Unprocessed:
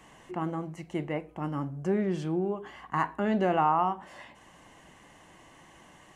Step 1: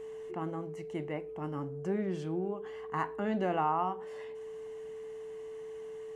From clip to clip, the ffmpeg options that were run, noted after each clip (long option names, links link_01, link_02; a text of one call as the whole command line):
ffmpeg -i in.wav -af "aeval=exprs='val(0)+0.0178*sin(2*PI*440*n/s)':channel_layout=same,volume=-5.5dB" out.wav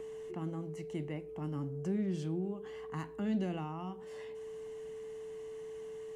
ffmpeg -i in.wav -filter_complex "[0:a]acrossover=split=300|3000[link_01][link_02][link_03];[link_02]acompressor=threshold=-49dB:ratio=5[link_04];[link_01][link_04][link_03]amix=inputs=3:normalize=0,volume=2.5dB" out.wav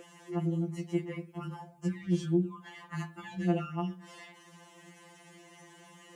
ffmpeg -i in.wav -af "highpass=170,afftfilt=real='re*2.83*eq(mod(b,8),0)':imag='im*2.83*eq(mod(b,8),0)':win_size=2048:overlap=0.75,volume=8dB" out.wav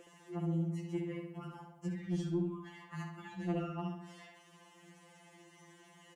ffmpeg -i in.wav -filter_complex "[0:a]asoftclip=type=tanh:threshold=-19dB,asplit=2[link_01][link_02];[link_02]adelay=67,lowpass=frequency=4200:poles=1,volume=-4.5dB,asplit=2[link_03][link_04];[link_04]adelay=67,lowpass=frequency=4200:poles=1,volume=0.53,asplit=2[link_05][link_06];[link_06]adelay=67,lowpass=frequency=4200:poles=1,volume=0.53,asplit=2[link_07][link_08];[link_08]adelay=67,lowpass=frequency=4200:poles=1,volume=0.53,asplit=2[link_09][link_10];[link_10]adelay=67,lowpass=frequency=4200:poles=1,volume=0.53,asplit=2[link_11][link_12];[link_12]adelay=67,lowpass=frequency=4200:poles=1,volume=0.53,asplit=2[link_13][link_14];[link_14]adelay=67,lowpass=frequency=4200:poles=1,volume=0.53[link_15];[link_03][link_05][link_07][link_09][link_11][link_13][link_15]amix=inputs=7:normalize=0[link_16];[link_01][link_16]amix=inputs=2:normalize=0,volume=-6.5dB" out.wav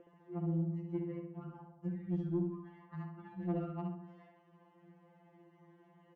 ffmpeg -i in.wav -af "adynamicsmooth=sensitivity=1.5:basefreq=1100" out.wav